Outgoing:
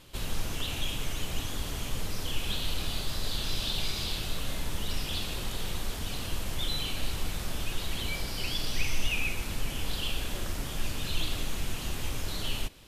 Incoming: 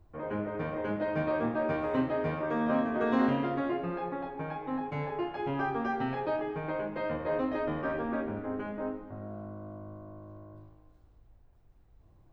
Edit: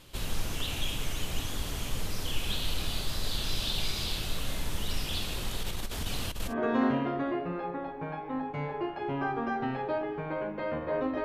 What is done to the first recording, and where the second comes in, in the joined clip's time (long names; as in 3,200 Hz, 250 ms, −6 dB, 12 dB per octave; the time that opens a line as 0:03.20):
outgoing
0:05.63–0:06.54: compressor whose output falls as the input rises −31 dBFS, ratio −0.5
0:06.50: continue with incoming from 0:02.88, crossfade 0.08 s